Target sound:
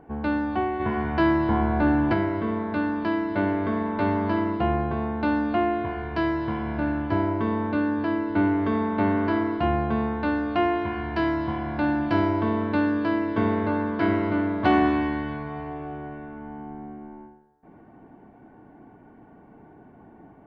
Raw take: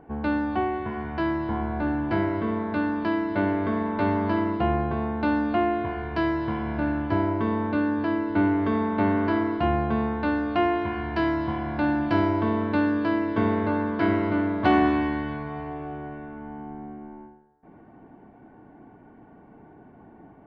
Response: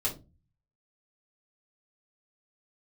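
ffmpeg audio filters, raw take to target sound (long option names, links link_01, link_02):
-filter_complex "[0:a]asplit=3[link_01][link_02][link_03];[link_01]afade=type=out:start_time=0.79:duration=0.02[link_04];[link_02]acontrast=38,afade=type=in:start_time=0.79:duration=0.02,afade=type=out:start_time=2.12:duration=0.02[link_05];[link_03]afade=type=in:start_time=2.12:duration=0.02[link_06];[link_04][link_05][link_06]amix=inputs=3:normalize=0"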